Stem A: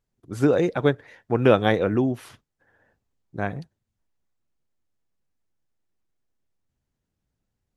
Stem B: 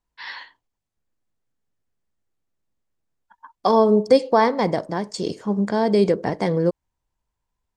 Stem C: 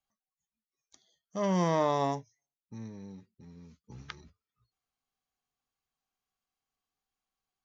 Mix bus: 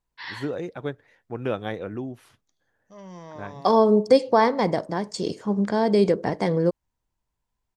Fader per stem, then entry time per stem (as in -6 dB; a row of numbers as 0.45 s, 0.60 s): -10.5 dB, -1.5 dB, -14.5 dB; 0.00 s, 0.00 s, 1.55 s